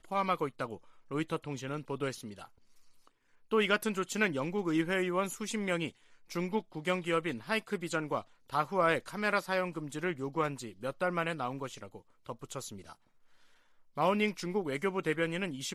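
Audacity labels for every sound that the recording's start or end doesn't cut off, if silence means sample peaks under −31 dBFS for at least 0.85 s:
3.520000	12.590000	sound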